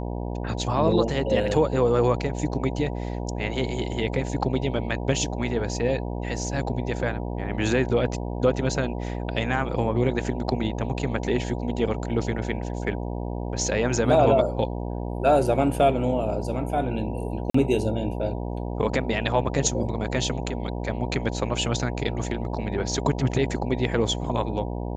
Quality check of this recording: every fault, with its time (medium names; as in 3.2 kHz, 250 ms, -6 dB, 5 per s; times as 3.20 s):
buzz 60 Hz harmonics 16 -30 dBFS
17.50–17.54 s: dropout 44 ms